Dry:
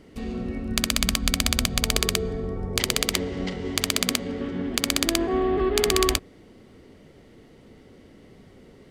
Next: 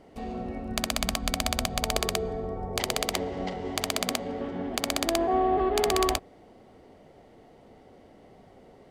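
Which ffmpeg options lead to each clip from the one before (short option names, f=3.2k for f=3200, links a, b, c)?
-af "equalizer=f=740:w=1.5:g=14.5,volume=-6.5dB"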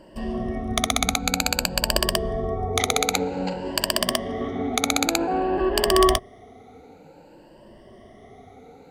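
-af "afftfilt=real='re*pow(10,16/40*sin(2*PI*(1.3*log(max(b,1)*sr/1024/100)/log(2)-(0.53)*(pts-256)/sr)))':imag='im*pow(10,16/40*sin(2*PI*(1.3*log(max(b,1)*sr/1024/100)/log(2)-(0.53)*(pts-256)/sr)))':win_size=1024:overlap=0.75,volume=3dB"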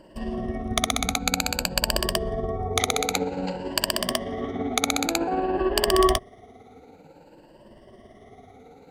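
-af "tremolo=f=18:d=0.4"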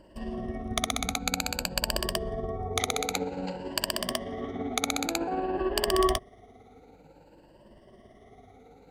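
-af "aeval=exprs='val(0)+0.00126*(sin(2*PI*50*n/s)+sin(2*PI*2*50*n/s)/2+sin(2*PI*3*50*n/s)/3+sin(2*PI*4*50*n/s)/4+sin(2*PI*5*50*n/s)/5)':c=same,volume=-5dB"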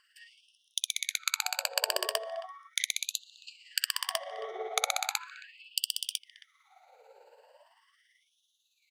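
-filter_complex "[0:a]asplit=2[a][b];[b]adelay=270,highpass=300,lowpass=3.4k,asoftclip=type=hard:threshold=-16dB,volume=-17dB[c];[a][c]amix=inputs=2:normalize=0,afftfilt=real='re*gte(b*sr/1024,380*pow(2700/380,0.5+0.5*sin(2*PI*0.38*pts/sr)))':imag='im*gte(b*sr/1024,380*pow(2700/380,0.5+0.5*sin(2*PI*0.38*pts/sr)))':win_size=1024:overlap=0.75"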